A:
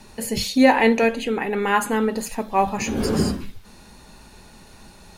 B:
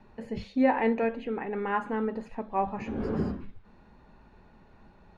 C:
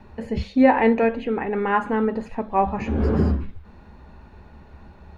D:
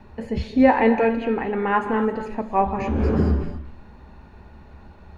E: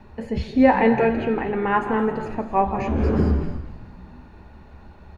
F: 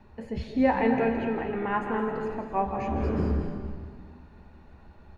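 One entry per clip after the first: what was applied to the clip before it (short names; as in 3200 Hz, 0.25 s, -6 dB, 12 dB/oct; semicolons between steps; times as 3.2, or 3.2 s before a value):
LPF 1700 Hz 12 dB/oct; gain -8.5 dB
bell 73 Hz +14 dB 0.42 oct; gain +8 dB
non-linear reverb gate 0.29 s rising, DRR 9 dB
frequency-shifting echo 0.168 s, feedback 61%, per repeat -64 Hz, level -15.5 dB
digital reverb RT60 1.7 s, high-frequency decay 0.7×, pre-delay 0.115 s, DRR 7 dB; gain -7.5 dB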